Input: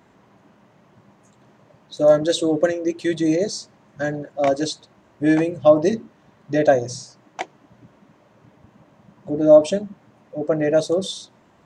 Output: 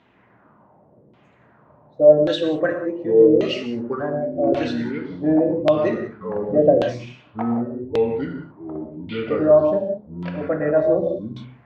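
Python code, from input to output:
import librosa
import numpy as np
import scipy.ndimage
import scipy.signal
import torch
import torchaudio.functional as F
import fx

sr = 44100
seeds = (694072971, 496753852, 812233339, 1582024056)

y = fx.echo_pitch(x, sr, ms=391, semitones=-5, count=2, db_per_echo=-6.0)
y = fx.rev_gated(y, sr, seeds[0], gate_ms=210, shape='flat', drr_db=2.5)
y = fx.filter_lfo_lowpass(y, sr, shape='saw_down', hz=0.88, low_hz=400.0, high_hz=3400.0, q=2.5)
y = F.gain(torch.from_numpy(y), -4.5).numpy()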